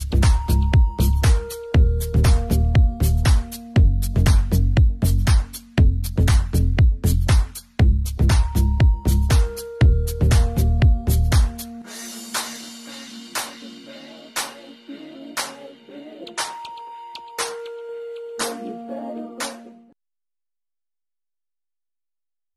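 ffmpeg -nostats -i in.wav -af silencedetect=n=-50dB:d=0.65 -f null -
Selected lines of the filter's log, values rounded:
silence_start: 19.92
silence_end: 22.56 | silence_duration: 2.64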